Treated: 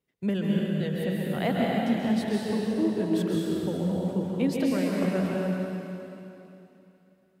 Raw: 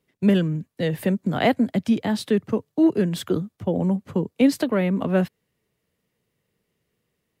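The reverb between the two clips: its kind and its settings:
dense smooth reverb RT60 3 s, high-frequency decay 1×, pre-delay 120 ms, DRR −4 dB
level −10 dB

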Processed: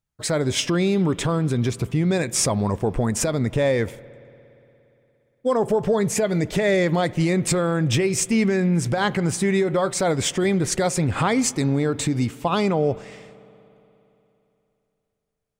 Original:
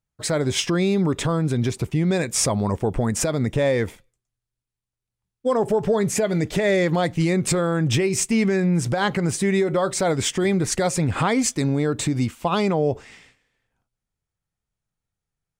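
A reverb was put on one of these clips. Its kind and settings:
spring reverb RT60 3.2 s, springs 58 ms, chirp 50 ms, DRR 19.5 dB

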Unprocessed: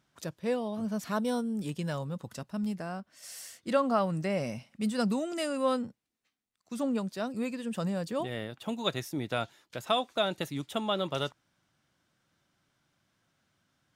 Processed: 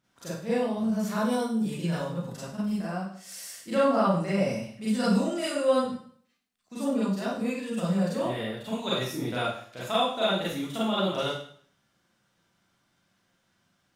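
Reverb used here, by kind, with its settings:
four-comb reverb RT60 0.54 s, combs from 32 ms, DRR −9.5 dB
level −6 dB

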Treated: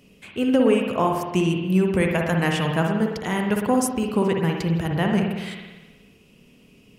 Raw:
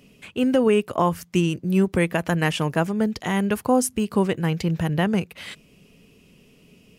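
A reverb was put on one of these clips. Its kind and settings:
spring reverb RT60 1.2 s, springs 54 ms, chirp 30 ms, DRR 1.5 dB
level −1.5 dB

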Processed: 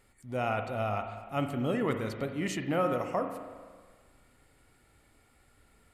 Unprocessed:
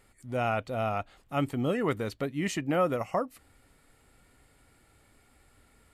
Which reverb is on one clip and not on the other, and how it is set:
spring reverb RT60 1.6 s, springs 37/48 ms, chirp 55 ms, DRR 6 dB
level −2.5 dB

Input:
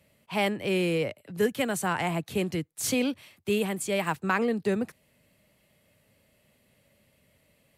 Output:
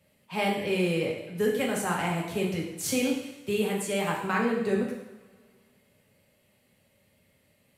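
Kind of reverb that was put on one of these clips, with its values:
coupled-rooms reverb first 0.85 s, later 2.4 s, from −20 dB, DRR −2 dB
level −4.5 dB

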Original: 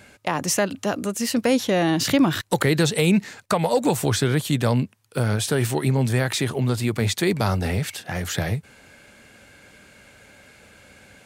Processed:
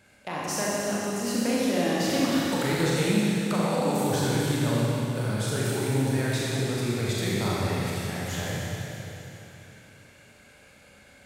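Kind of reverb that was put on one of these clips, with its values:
four-comb reverb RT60 3.3 s, combs from 30 ms, DRR −6.5 dB
level −11.5 dB

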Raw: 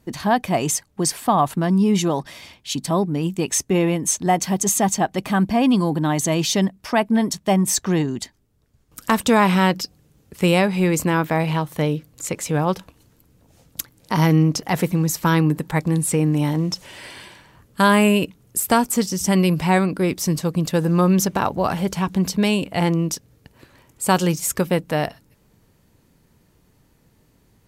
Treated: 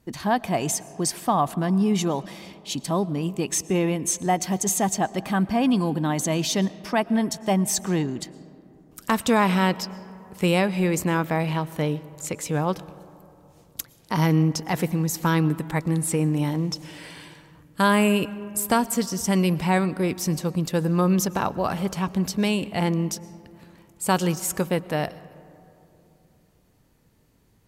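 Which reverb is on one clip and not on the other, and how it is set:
comb and all-pass reverb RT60 3 s, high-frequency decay 0.35×, pre-delay 75 ms, DRR 18 dB
level −4 dB

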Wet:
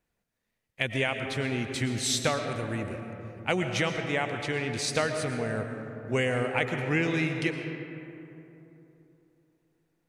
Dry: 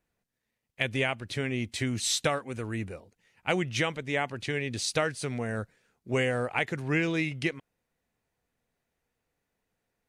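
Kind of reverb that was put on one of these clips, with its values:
comb and all-pass reverb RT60 3.2 s, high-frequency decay 0.4×, pre-delay 75 ms, DRR 5 dB

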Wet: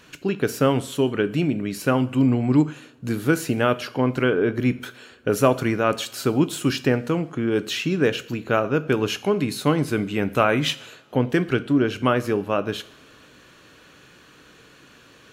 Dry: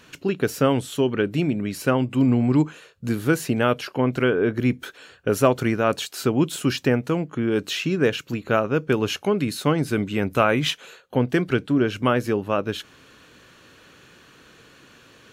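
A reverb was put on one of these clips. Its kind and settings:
coupled-rooms reverb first 0.57 s, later 5 s, from −28 dB, DRR 12.5 dB

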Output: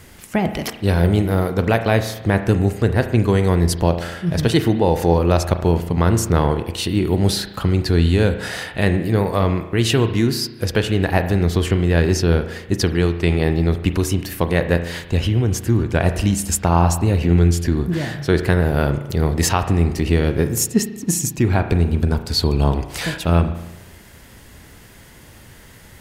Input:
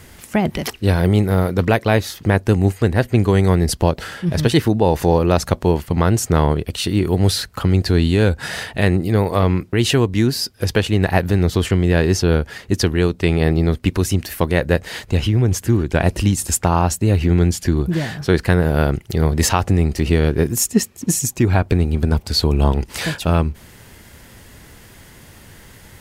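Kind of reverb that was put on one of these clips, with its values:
spring reverb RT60 1 s, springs 35 ms, chirp 40 ms, DRR 8.5 dB
level −1.5 dB

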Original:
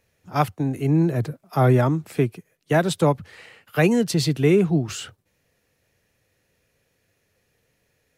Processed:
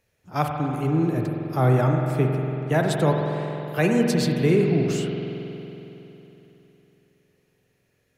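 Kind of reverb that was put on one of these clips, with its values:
spring reverb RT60 3.4 s, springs 46 ms, chirp 55 ms, DRR 1.5 dB
level −3.5 dB

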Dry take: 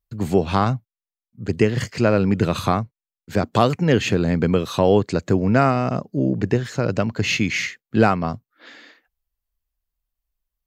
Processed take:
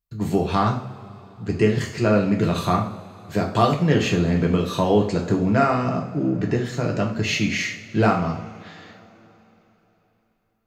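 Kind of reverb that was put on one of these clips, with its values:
coupled-rooms reverb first 0.47 s, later 3.6 s, from −21 dB, DRR −0.5 dB
level −4.5 dB

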